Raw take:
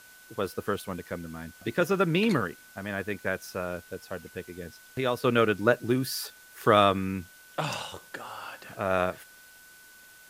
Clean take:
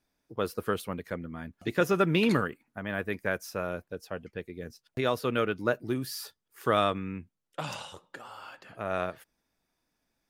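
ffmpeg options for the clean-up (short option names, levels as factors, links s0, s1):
-af "bandreject=f=1500:w=30,afwtdn=0.002,asetnsamples=n=441:p=0,asendcmd='5.24 volume volume -5dB',volume=1"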